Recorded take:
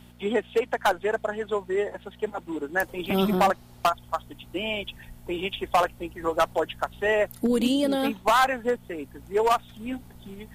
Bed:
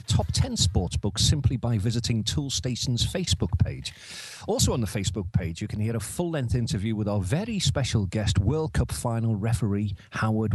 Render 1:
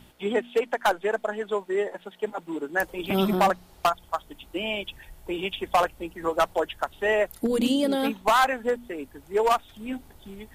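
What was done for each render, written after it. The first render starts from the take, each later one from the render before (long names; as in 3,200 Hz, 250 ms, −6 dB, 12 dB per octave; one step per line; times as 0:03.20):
hum removal 60 Hz, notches 4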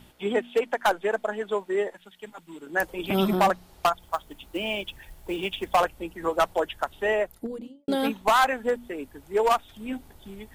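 0:01.90–0:02.67: parametric band 530 Hz −14 dB 2.7 octaves
0:04.02–0:05.75: log-companded quantiser 6 bits
0:06.93–0:07.88: fade out and dull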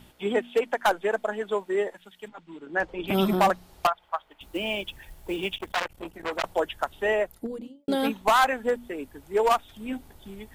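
0:02.28–0:03.08: high-frequency loss of the air 150 metres
0:03.87–0:04.41: three-way crossover with the lows and the highs turned down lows −18 dB, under 540 Hz, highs −20 dB, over 3,300 Hz
0:05.56–0:06.44: saturating transformer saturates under 2,800 Hz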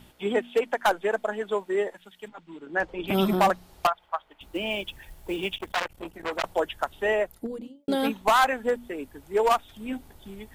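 0:04.06–0:04.71: high-shelf EQ 5,400 Hz −4 dB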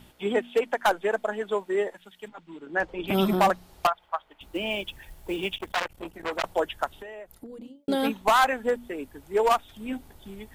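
0:06.94–0:07.79: downward compressor 16 to 1, threshold −37 dBFS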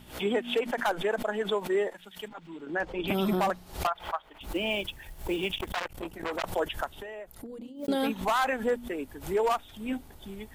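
brickwall limiter −19 dBFS, peak gain reduction 8 dB
background raised ahead of every attack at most 140 dB per second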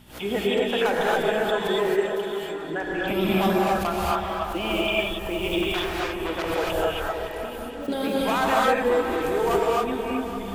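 echo whose low-pass opens from repeat to repeat 188 ms, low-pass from 400 Hz, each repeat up 2 octaves, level −6 dB
reverb whose tail is shaped and stops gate 300 ms rising, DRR −4.5 dB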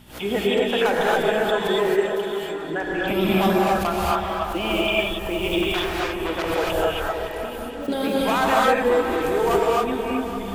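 level +2.5 dB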